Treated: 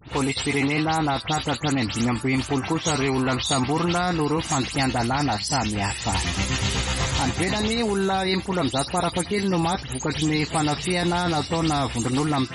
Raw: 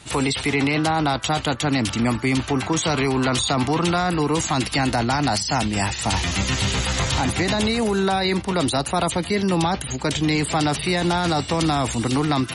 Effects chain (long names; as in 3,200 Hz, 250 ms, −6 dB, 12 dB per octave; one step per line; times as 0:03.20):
every frequency bin delayed by itself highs late, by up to 110 ms
level −2 dB